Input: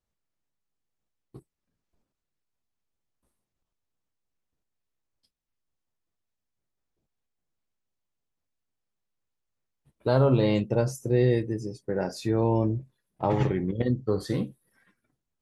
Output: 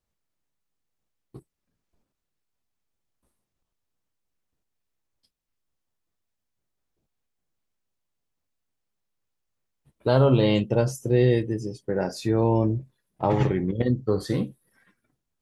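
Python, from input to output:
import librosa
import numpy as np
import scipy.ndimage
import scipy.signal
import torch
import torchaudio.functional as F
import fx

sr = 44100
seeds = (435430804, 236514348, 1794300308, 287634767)

y = fx.peak_eq(x, sr, hz=3100.0, db=10.5, octaves=0.23, at=(10.09, 11.89))
y = y * librosa.db_to_amplitude(2.5)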